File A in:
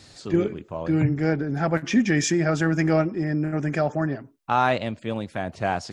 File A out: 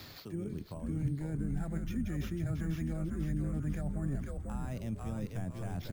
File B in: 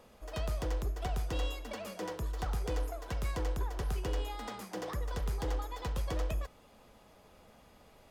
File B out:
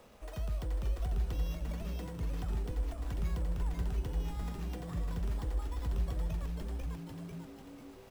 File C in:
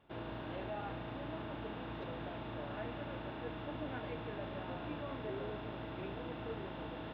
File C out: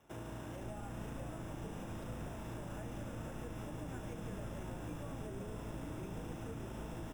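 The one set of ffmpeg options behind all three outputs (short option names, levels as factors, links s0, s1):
-filter_complex "[0:a]areverse,acompressor=threshold=0.0316:ratio=6,areverse,acrusher=samples=5:mix=1:aa=0.000001,asplit=7[s0][s1][s2][s3][s4][s5][s6];[s1]adelay=494,afreqshift=-110,volume=0.596[s7];[s2]adelay=988,afreqshift=-220,volume=0.269[s8];[s3]adelay=1482,afreqshift=-330,volume=0.12[s9];[s4]adelay=1976,afreqshift=-440,volume=0.0543[s10];[s5]adelay=2470,afreqshift=-550,volume=0.0245[s11];[s6]adelay=2964,afreqshift=-660,volume=0.011[s12];[s0][s7][s8][s9][s10][s11][s12]amix=inputs=7:normalize=0,acrossover=split=230[s13][s14];[s14]acompressor=threshold=0.00398:ratio=6[s15];[s13][s15]amix=inputs=2:normalize=0,volume=1.12"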